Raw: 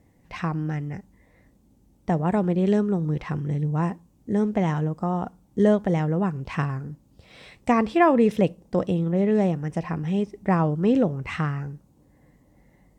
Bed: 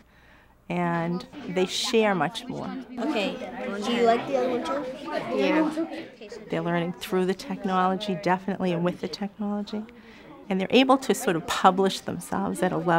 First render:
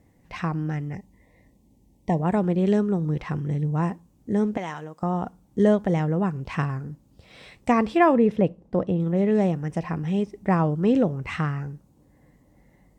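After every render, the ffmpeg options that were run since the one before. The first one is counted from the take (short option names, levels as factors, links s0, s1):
-filter_complex "[0:a]asettb=1/sr,asplit=3[s0][s1][s2];[s0]atrim=end=0.954[s3];[s1]atrim=start=0.95:end=2.22,asetpts=PTS-STARTPTS,afade=t=in:d=0.004:c=qsin,afade=t=out:st=1.266:d=0.004:c=qsin,asuperstop=centerf=1400:order=12:qfactor=2.1[s4];[s2]atrim=start=2.216[s5];[s3][s4]acrossfade=d=0.004:c1=hsin:c2=qsin[s6];[s6][s5]acrossfade=d=0.004:c1=qsin:c2=hsin,asettb=1/sr,asplit=3[s7][s8][s9];[s7]atrim=end=4.574[s10];[s8]atrim=start=4.57:end=5.03,asetpts=PTS-STARTPTS,afade=t=in:d=0.004:c=qsin,afade=t=out:st=0.456:d=0.004:c=qsin,highpass=f=970:p=1[s11];[s9]atrim=start=5.026[s12];[s10][s11]acrossfade=d=0.004:c1=hsin:c2=qsin[s13];[s13][s12]acrossfade=d=0.004:c1=qsin:c2=hsin,asettb=1/sr,asplit=3[s14][s15][s16];[s14]atrim=end=8.174[s17];[s15]atrim=start=8.17:end=9,asetpts=PTS-STARTPTS,afade=t=in:d=0.004:c=qsin,afade=t=out:st=0.826:d=0.004:c=qsin,lowpass=f=1400:p=1[s18];[s16]atrim=start=8.996[s19];[s17][s18]acrossfade=d=0.004:c1=hsin:c2=qsin[s20];[s20][s19]acrossfade=d=0.004:c1=qsin:c2=hsin"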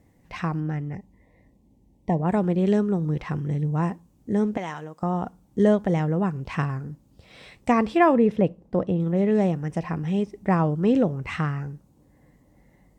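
-filter_complex "[0:a]asettb=1/sr,asplit=3[s0][s1][s2];[s0]atrim=end=0.604[s3];[s1]atrim=start=0.6:end=2.29,asetpts=PTS-STARTPTS,afade=t=in:d=0.004:c=qsin,afade=t=out:st=1.686:d=0.004:c=qsin,highshelf=f=2900:g=-8.5[s4];[s2]atrim=start=2.286[s5];[s3][s4]acrossfade=d=0.004:c1=hsin:c2=qsin[s6];[s6][s5]acrossfade=d=0.004:c1=qsin:c2=hsin"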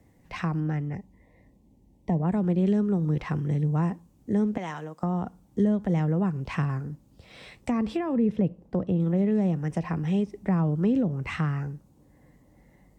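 -filter_complex "[0:a]acrossover=split=260[s0][s1];[s1]alimiter=limit=0.133:level=0:latency=1:release=122[s2];[s0][s2]amix=inputs=2:normalize=0,acrossover=split=280[s3][s4];[s4]acompressor=threshold=0.0316:ratio=6[s5];[s3][s5]amix=inputs=2:normalize=0"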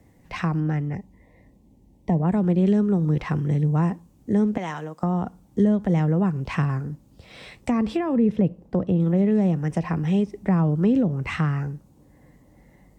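-af "volume=1.58"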